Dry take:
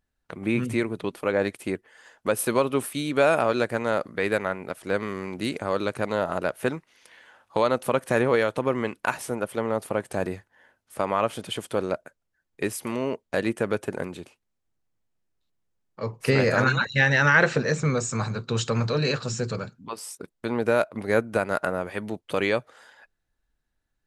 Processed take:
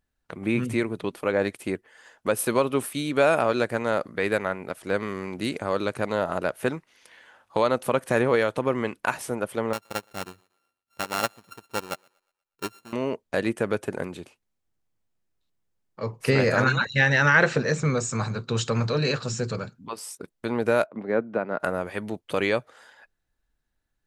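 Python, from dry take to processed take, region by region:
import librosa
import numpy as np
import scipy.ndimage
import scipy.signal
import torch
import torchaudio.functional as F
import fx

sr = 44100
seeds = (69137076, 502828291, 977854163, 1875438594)

y = fx.chain(x, sr, fx.sample_sort(block=32),
    fx.echo_thinned(ms=120, feedback_pct=44, hz=390.0, wet_db=-16.5),
    fx.upward_expand(threshold_db=-33.0, expansion=2.5), at=(9.73, 12.93))
y = fx.chain(y, sr, fx.highpass(hz=150.0, slope=24),
    fx.spacing_loss(db_at_10k=37), at=(20.86, 21.6))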